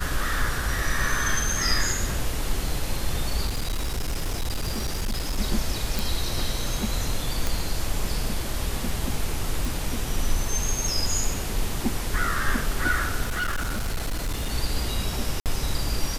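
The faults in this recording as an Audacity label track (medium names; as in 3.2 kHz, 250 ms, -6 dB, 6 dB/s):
3.460000	5.390000	clipped -22.5 dBFS
5.990000	5.990000	pop
7.470000	7.470000	pop
9.650000	9.650000	pop
13.220000	14.520000	clipped -23 dBFS
15.400000	15.460000	dropout 58 ms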